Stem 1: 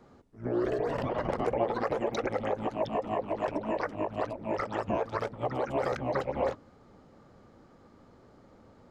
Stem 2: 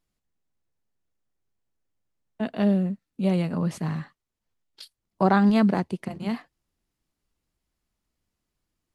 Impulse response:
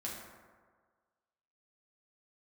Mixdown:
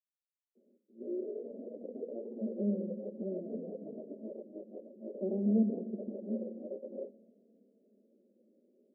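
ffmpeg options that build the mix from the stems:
-filter_complex "[0:a]flanger=delay=0.6:depth=4.7:regen=-85:speed=1.7:shape=sinusoidal,acrusher=samples=24:mix=1:aa=0.000001,adelay=550,volume=0.841,asplit=2[s0][s1];[s1]volume=0.141[s2];[1:a]acrusher=bits=4:mix=0:aa=0.5,volume=0.355,asplit=3[s3][s4][s5];[s4]volume=0.531[s6];[s5]volume=0.141[s7];[2:a]atrim=start_sample=2205[s8];[s2][s6]amix=inputs=2:normalize=0[s9];[s9][s8]afir=irnorm=-1:irlink=0[s10];[s7]aecho=0:1:320|640|960|1280|1600|1920|2240|2560|2880:1|0.59|0.348|0.205|0.121|0.0715|0.0422|0.0249|0.0147[s11];[s0][s3][s10][s11]amix=inputs=4:normalize=0,flanger=delay=4.3:depth=1.2:regen=-30:speed=0.53:shape=triangular,asuperpass=centerf=350:order=12:qfactor=0.94"

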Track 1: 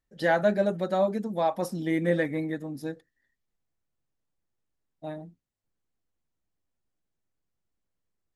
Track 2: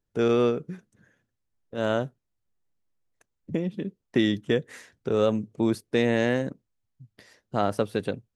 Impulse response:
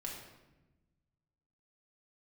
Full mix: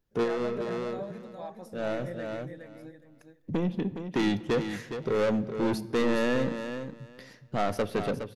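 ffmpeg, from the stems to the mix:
-filter_complex "[0:a]volume=0.133,asplit=4[s0][s1][s2][s3];[s1]volume=0.282[s4];[s2]volume=0.631[s5];[1:a]equalizer=f=8300:t=o:w=0.45:g=-9.5,asoftclip=type=tanh:threshold=0.0531,volume=1.26,asplit=3[s6][s7][s8];[s7]volume=0.282[s9];[s8]volume=0.422[s10];[s3]apad=whole_len=368338[s11];[s6][s11]sidechaincompress=threshold=0.00562:ratio=8:attack=30:release=1330[s12];[2:a]atrim=start_sample=2205[s13];[s4][s9]amix=inputs=2:normalize=0[s14];[s14][s13]afir=irnorm=-1:irlink=0[s15];[s5][s10]amix=inputs=2:normalize=0,aecho=0:1:414|828|1242:1|0.16|0.0256[s16];[s0][s12][s15][s16]amix=inputs=4:normalize=0"

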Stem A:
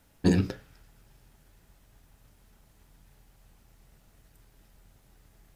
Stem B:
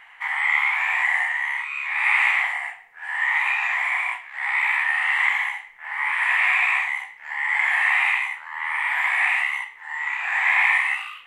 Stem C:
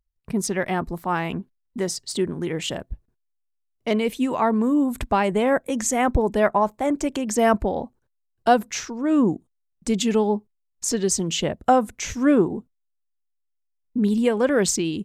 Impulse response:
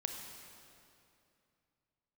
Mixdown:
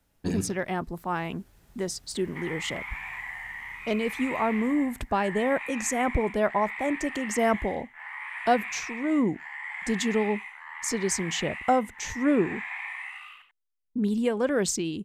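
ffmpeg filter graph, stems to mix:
-filter_complex "[0:a]dynaudnorm=f=210:g=11:m=3.55,volume=0.422,asplit=2[s0][s1];[s1]volume=0.224[s2];[1:a]acompressor=threshold=0.0224:ratio=2.5,adelay=2150,volume=0.447,asplit=2[s3][s4];[s4]volume=0.447[s5];[2:a]volume=0.531[s6];[s2][s5]amix=inputs=2:normalize=0,aecho=0:1:91:1[s7];[s0][s3][s6][s7]amix=inputs=4:normalize=0"

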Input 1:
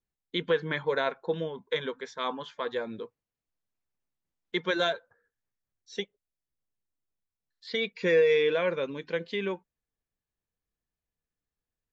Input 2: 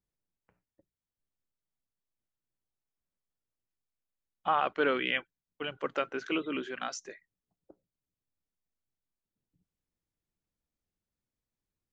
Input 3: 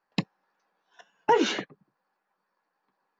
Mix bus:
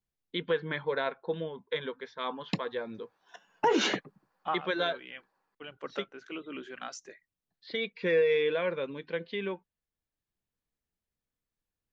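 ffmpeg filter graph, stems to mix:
-filter_complex "[0:a]lowpass=f=4400:w=0.5412,lowpass=f=4400:w=1.3066,volume=0.708,asplit=2[s0][s1];[1:a]volume=0.668[s2];[2:a]dynaudnorm=f=400:g=3:m=1.58,alimiter=limit=0.188:level=0:latency=1:release=89,adelay=2350,volume=0.794[s3];[s1]apad=whole_len=525832[s4];[s2][s4]sidechaincompress=threshold=0.0141:ratio=10:attack=10:release=1260[s5];[s0][s5][s3]amix=inputs=3:normalize=0"

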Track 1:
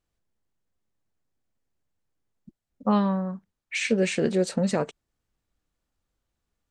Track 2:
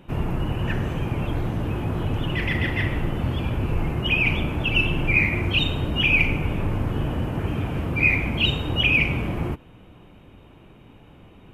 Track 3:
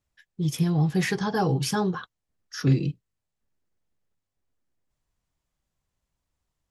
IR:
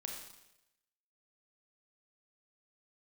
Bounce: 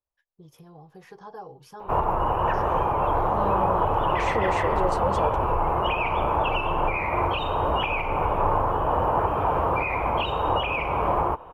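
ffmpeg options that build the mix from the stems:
-filter_complex "[0:a]alimiter=limit=0.0841:level=0:latency=1,adelay=450,volume=1.06[s0];[1:a]alimiter=limit=0.158:level=0:latency=1:release=251,equalizer=f=1000:t=o:w=1.4:g=11.5,adelay=1800,volume=1[s1];[2:a]acompressor=threshold=0.0447:ratio=6,volume=0.224[s2];[s0][s1][s2]amix=inputs=3:normalize=0,equalizer=f=125:t=o:w=1:g=-7,equalizer=f=250:t=o:w=1:g=-9,equalizer=f=500:t=o:w=1:g=7,equalizer=f=1000:t=o:w=1:g=8,equalizer=f=2000:t=o:w=1:g=-7,equalizer=f=4000:t=o:w=1:g=-5,equalizer=f=8000:t=o:w=1:g=-10"

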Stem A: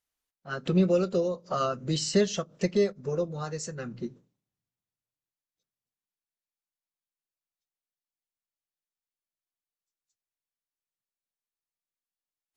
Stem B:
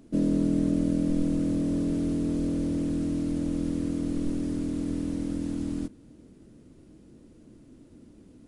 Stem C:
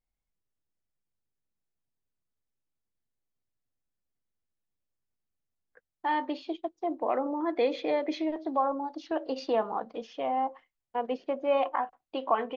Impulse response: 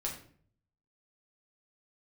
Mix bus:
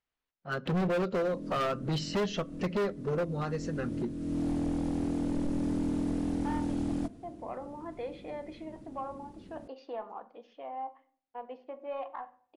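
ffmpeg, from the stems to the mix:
-filter_complex "[0:a]lowpass=3500,volume=1.12,asplit=3[s0][s1][s2];[s1]volume=0.0794[s3];[1:a]acompressor=threshold=0.0447:ratio=3,adelay=1200,volume=1.19[s4];[2:a]asplit=2[s5][s6];[s6]highpass=f=720:p=1,volume=2.82,asoftclip=type=tanh:threshold=0.251[s7];[s5][s7]amix=inputs=2:normalize=0,lowpass=f=1800:p=1,volume=0.501,adelay=400,volume=0.178,asplit=2[s8][s9];[s9]volume=0.355[s10];[s2]apad=whole_len=426786[s11];[s4][s11]sidechaincompress=threshold=0.01:ratio=16:attack=8.3:release=417[s12];[3:a]atrim=start_sample=2205[s13];[s3][s10]amix=inputs=2:normalize=0[s14];[s14][s13]afir=irnorm=-1:irlink=0[s15];[s0][s12][s8][s15]amix=inputs=4:normalize=0,highshelf=f=4600:g=-4,asoftclip=type=hard:threshold=0.0473"

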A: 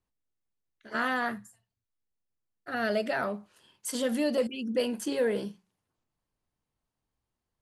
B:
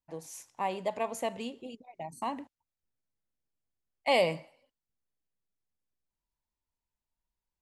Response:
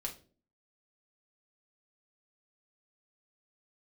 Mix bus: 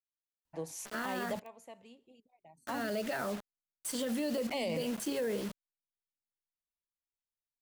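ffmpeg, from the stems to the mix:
-filter_complex "[0:a]acrusher=bits=6:mix=0:aa=0.000001,volume=0.794,asplit=2[s0][s1];[1:a]adelay=450,volume=1.26[s2];[s1]apad=whole_len=355517[s3];[s2][s3]sidechaingate=range=0.1:threshold=0.01:ratio=16:detection=peak[s4];[s0][s4]amix=inputs=2:normalize=0,acrossover=split=500|3000[s5][s6][s7];[s6]acompressor=threshold=0.0224:ratio=6[s8];[s5][s8][s7]amix=inputs=3:normalize=0,alimiter=level_in=1.33:limit=0.0631:level=0:latency=1:release=41,volume=0.75"

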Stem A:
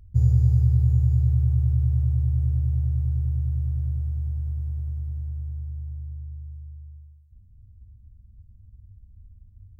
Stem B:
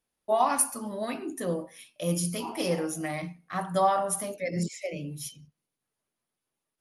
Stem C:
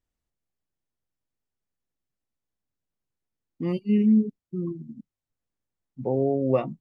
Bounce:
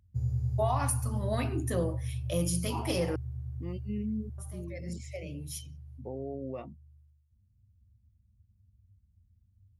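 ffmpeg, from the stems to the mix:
-filter_complex "[0:a]highpass=89,volume=0.316[s0];[1:a]alimiter=limit=0.1:level=0:latency=1:release=393,adelay=300,volume=1,asplit=3[s1][s2][s3];[s1]atrim=end=3.16,asetpts=PTS-STARTPTS,afade=t=out:st=3.156:d=0.004:c=hsin[s4];[s2]atrim=start=3.16:end=4.38,asetpts=PTS-STARTPTS,volume=0[s5];[s3]atrim=start=4.38,asetpts=PTS-STARTPTS,afade=t=in:d=0.004:c=hsin[s6];[s4][s5][s6]concat=n=3:v=0:a=1[s7];[2:a]alimiter=limit=0.158:level=0:latency=1:release=54,volume=0.224,asplit=2[s8][s9];[s9]apad=whole_len=313201[s10];[s7][s10]sidechaincompress=threshold=0.00224:ratio=4:attack=16:release=1080[s11];[s0][s11][s8]amix=inputs=3:normalize=0"

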